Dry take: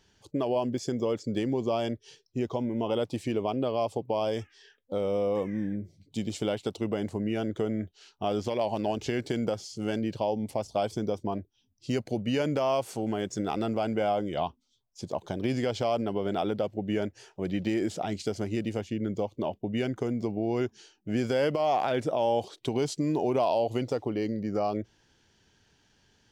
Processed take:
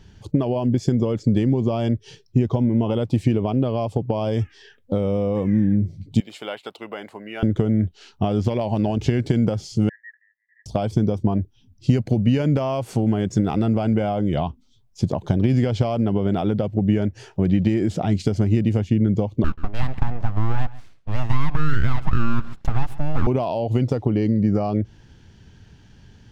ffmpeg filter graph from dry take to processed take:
ffmpeg -i in.wav -filter_complex "[0:a]asettb=1/sr,asplit=3[link_01][link_02][link_03];[link_01]atrim=end=6.204[link_04];[link_02]atrim=start=6.2:end=7.43,asetpts=PTS-STARTPTS,afade=type=in:duration=0.004:curve=qsin,afade=type=out:start_time=1.226:duration=0.004:curve=qsin,highpass=1000,equalizer=frequency=6600:width=0.72:gain=-11.5,bandreject=frequency=5800:width=17[link_05];[link_03]atrim=start=7.426[link_06];[link_04][link_05]acrossfade=duration=0.004:curve1=hsin:curve2=qsin[link_07];[link_07][link_06]acrossfade=duration=0.004:curve1=qsin:curve2=hsin,asettb=1/sr,asplit=3[link_08][link_09][link_10];[link_08]atrim=end=9.894[link_11];[link_09]atrim=start=9.89:end=10.66,asetpts=PTS-STARTPTS,afade=type=in:duration=0.004:curve=qsin,afade=type=out:start_time=0.766:duration=0.004:curve=qsin,acontrast=32,asuperpass=centerf=1800:order=8:qfactor=7.9[link_12];[link_10]atrim=start=10.656[link_13];[link_11][link_12]acrossfade=duration=0.004:curve1=hsin:curve2=qsin[link_14];[link_14][link_13]acrossfade=duration=0.004:curve1=qsin:curve2=hsin,asettb=1/sr,asplit=3[link_15][link_16][link_17];[link_15]atrim=end=19.444[link_18];[link_16]atrim=start=19.44:end=23.27,asetpts=PTS-STARTPTS,afade=type=in:duration=0.004:curve=qsin,afade=type=out:start_time=3.826:duration=0.004:curve=qsin,acrossover=split=370 2600:gain=0.0891 1 0.158[link_19][link_20][link_21];[link_19][link_20][link_21]amix=inputs=3:normalize=0,aeval=exprs='abs(val(0))':channel_layout=same,aecho=1:1:134:0.0944,atrim=end_sample=168903[link_22];[link_17]atrim=start=23.266[link_23];[link_18][link_22]acrossfade=duration=0.004:curve1=hsin:curve2=qsin[link_24];[link_24][link_23]acrossfade=duration=0.004:curve1=qsin:curve2=hsin,acompressor=threshold=-32dB:ratio=4,bass=frequency=250:gain=14,treble=frequency=4000:gain=-5,volume=9dB" out.wav

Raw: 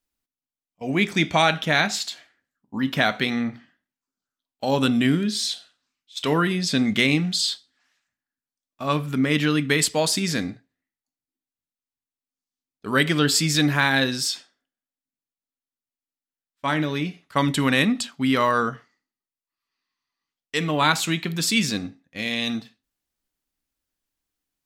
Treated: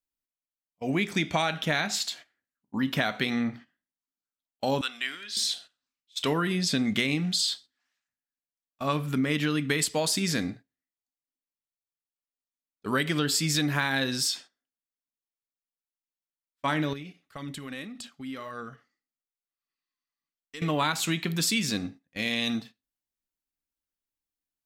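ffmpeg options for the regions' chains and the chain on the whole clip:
ffmpeg -i in.wav -filter_complex "[0:a]asettb=1/sr,asplit=3[link_01][link_02][link_03];[link_01]atrim=end=4.814[link_04];[link_02]atrim=start=4.81:end=5.37,asetpts=PTS-STARTPTS,afade=type=in:duration=0.004:curve=qsin,afade=type=out:start_time=0.556:duration=0.004:curve=qsin,highpass=1400,equalizer=frequency=12000:width=0.51:gain=-10[link_05];[link_03]atrim=start=5.366[link_06];[link_04][link_05]acrossfade=duration=0.004:curve1=hsin:curve2=qsin[link_07];[link_07][link_06]acrossfade=duration=0.004:curve1=qsin:curve2=hsin,asettb=1/sr,asplit=3[link_08][link_09][link_10];[link_08]atrim=end=16.934[link_11];[link_09]atrim=start=16.93:end=20.62,asetpts=PTS-STARTPTS,afade=type=in:duration=0.004:curve=qsin,afade=type=out:start_time=3.686:duration=0.004:curve=qsin,bandreject=frequency=950:width=7.5,acompressor=threshold=-37dB:ratio=5:attack=3.2:release=140:knee=1:detection=peak,aphaser=in_gain=1:out_gain=1:delay=3.9:decay=0.32:speed=1.8:type=sinusoidal[link_12];[link_10]atrim=start=20.616[link_13];[link_11][link_12]acrossfade=duration=0.004:curve1=hsin:curve2=qsin[link_14];[link_14][link_13]acrossfade=duration=0.004:curve1=qsin:curve2=hsin,highshelf=frequency=11000:gain=4.5,agate=range=-10dB:threshold=-42dB:ratio=16:detection=peak,acompressor=threshold=-21dB:ratio=6,volume=-1.5dB" out.wav

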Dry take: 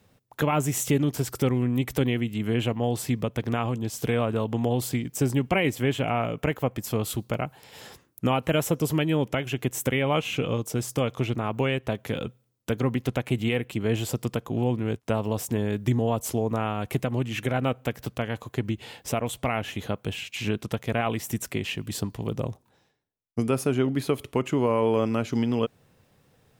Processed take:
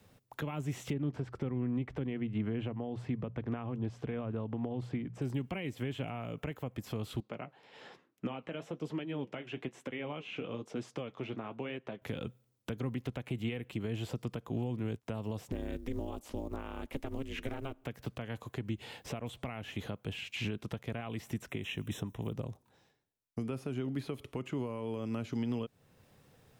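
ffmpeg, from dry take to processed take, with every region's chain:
ffmpeg -i in.wav -filter_complex "[0:a]asettb=1/sr,asplit=3[link_01][link_02][link_03];[link_01]atrim=end=0.934[link_04];[link_02]atrim=start=0.93:end=5.22,asetpts=PTS-STARTPTS,afade=type=in:duration=0.004:curve=qsin,afade=type=out:start_time=4.286:duration=0.004:curve=qsin,lowpass=1900,bandreject=frequency=60:width_type=h:width=6,bandreject=frequency=120:width_type=h:width=6,bandreject=frequency=180:width_type=h:width=6[link_05];[link_03]atrim=start=5.216[link_06];[link_04][link_05]acrossfade=duration=0.004:curve1=hsin:curve2=qsin[link_07];[link_07][link_06]acrossfade=duration=0.004:curve1=qsin:curve2=hsin,asettb=1/sr,asplit=3[link_08][link_09][link_10];[link_08]atrim=end=7.204[link_11];[link_09]atrim=start=7.2:end=12.02,asetpts=PTS-STARTPTS,afade=type=in:duration=0.004:curve=qsin,afade=type=out:start_time=4.816:duration=0.004:curve=qsin,flanger=delay=2.6:depth=8.6:regen=-59:speed=1.1:shape=triangular,highpass=210,lowpass=3200[link_12];[link_10]atrim=start=12.016[link_13];[link_11][link_12]acrossfade=duration=0.004:curve1=hsin:curve2=qsin[link_14];[link_14][link_13]acrossfade=duration=0.004:curve1=qsin:curve2=hsin,asettb=1/sr,asplit=3[link_15][link_16][link_17];[link_15]atrim=end=15.524[link_18];[link_16]atrim=start=15.52:end=17.84,asetpts=PTS-STARTPTS,afade=type=in:duration=0.004:curve=qsin,afade=type=out:start_time=2.316:duration=0.004:curve=qsin,acrusher=bits=9:mode=log:mix=0:aa=0.000001,aeval=exprs='val(0)*sin(2*PI*140*n/s)':channel_layout=same[link_19];[link_17]atrim=start=17.836[link_20];[link_18][link_19]acrossfade=duration=0.004:curve1=hsin:curve2=qsin[link_21];[link_21][link_20]acrossfade=duration=0.004:curve1=qsin:curve2=hsin,asettb=1/sr,asplit=3[link_22][link_23][link_24];[link_22]atrim=end=21.484[link_25];[link_23]atrim=start=21.48:end=22.33,asetpts=PTS-STARTPTS,afade=type=in:duration=0.004:curve=qsin,afade=type=out:start_time=0.846:duration=0.004:curve=qsin,asuperstop=centerf=4600:order=20:qfactor=3.4,highshelf=frequency=8400:gain=9.5[link_26];[link_24]atrim=start=22.326[link_27];[link_25][link_26]acrossfade=duration=0.004:curve1=hsin:curve2=qsin[link_28];[link_28][link_27]acrossfade=duration=0.004:curve1=qsin:curve2=hsin,acrossover=split=4100[link_29][link_30];[link_30]acompressor=threshold=-51dB:ratio=4:attack=1:release=60[link_31];[link_29][link_31]amix=inputs=2:normalize=0,alimiter=limit=-23.5dB:level=0:latency=1:release=467,acrossover=split=300|3000[link_32][link_33][link_34];[link_33]acompressor=threshold=-39dB:ratio=6[link_35];[link_32][link_35][link_34]amix=inputs=3:normalize=0,volume=-1dB" out.wav

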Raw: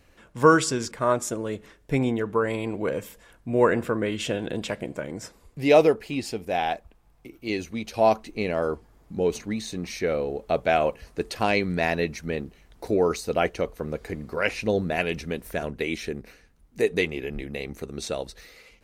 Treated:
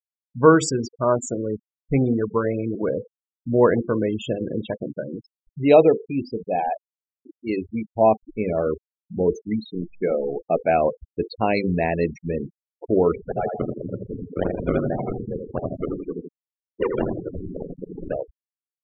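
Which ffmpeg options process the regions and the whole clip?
ffmpeg -i in.wav -filter_complex "[0:a]asettb=1/sr,asplit=3[link_01][link_02][link_03];[link_01]atrim=end=9.734[link_04];[link_02]atrim=start=9.73:end=10.69,asetpts=PTS-STARTPTS,afade=type=in:duration=0.004:curve=qsin,afade=type=out:start_time=0.956:duration=0.004:curve=qsin,equalizer=frequency=80:width_type=o:width=0.59:gain=-13.5,acrusher=bits=6:dc=4:mix=0:aa=0.000001[link_05];[link_03]atrim=start=10.686[link_06];[link_04][link_05]acrossfade=duration=0.004:curve1=hsin:curve2=qsin[link_07];[link_07][link_06]acrossfade=duration=0.004:curve1=qsin:curve2=hsin,asettb=1/sr,asplit=3[link_08][link_09][link_10];[link_08]atrim=end=13.154[link_11];[link_09]atrim=start=13.15:end=18.13,asetpts=PTS-STARTPTS,afade=type=in:duration=0.004:curve=qsin,afade=type=out:start_time=4.976:duration=0.004:curve=qsin,acrusher=samples=29:mix=1:aa=0.000001:lfo=1:lforange=46.4:lforate=2.7,aeval=exprs='val(0)*sin(2*PI*44*n/s)':channel_layout=same,asplit=2[link_12][link_13];[link_13]adelay=82,lowpass=frequency=4400:poles=1,volume=-4dB,asplit=2[link_14][link_15];[link_15]adelay=82,lowpass=frequency=4400:poles=1,volume=0.52,asplit=2[link_16][link_17];[link_17]adelay=82,lowpass=frequency=4400:poles=1,volume=0.52,asplit=2[link_18][link_19];[link_19]adelay=82,lowpass=frequency=4400:poles=1,volume=0.52,asplit=2[link_20][link_21];[link_21]adelay=82,lowpass=frequency=4400:poles=1,volume=0.52,asplit=2[link_22][link_23];[link_23]adelay=82,lowpass=frequency=4400:poles=1,volume=0.52,asplit=2[link_24][link_25];[link_25]adelay=82,lowpass=frequency=4400:poles=1,volume=0.52[link_26];[link_12][link_14][link_16][link_18][link_20][link_22][link_24][link_26]amix=inputs=8:normalize=0,atrim=end_sample=219618[link_27];[link_10]atrim=start=18.126[link_28];[link_11][link_27]acrossfade=duration=0.004:curve1=hsin:curve2=qsin[link_29];[link_29][link_28]acrossfade=duration=0.004:curve1=qsin:curve2=hsin,bandreject=frequency=50:width_type=h:width=6,bandreject=frequency=100:width_type=h:width=6,bandreject=frequency=150:width_type=h:width=6,bandreject=frequency=200:width_type=h:width=6,bandreject=frequency=250:width_type=h:width=6,bandreject=frequency=300:width_type=h:width=6,bandreject=frequency=350:width_type=h:width=6,bandreject=frequency=400:width_type=h:width=6,bandreject=frequency=450:width_type=h:width=6,bandreject=frequency=500:width_type=h:width=6,afftfilt=real='re*gte(hypot(re,im),0.0631)':imag='im*gte(hypot(re,im),0.0631)':win_size=1024:overlap=0.75,equalizer=frequency=2000:width_type=o:width=2.3:gain=-8,volume=5.5dB" out.wav

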